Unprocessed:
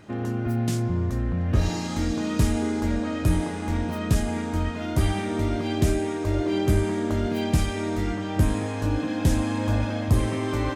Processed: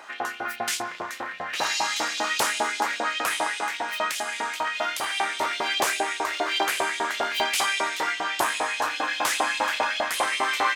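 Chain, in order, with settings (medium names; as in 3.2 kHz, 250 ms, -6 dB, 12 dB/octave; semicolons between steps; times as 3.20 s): one-sided wavefolder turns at -19.5 dBFS; 3.62–5.41 s: compression 2.5:1, threshold -25 dBFS, peak gain reduction 6 dB; LFO high-pass saw up 5 Hz 720–3600 Hz; trim +8 dB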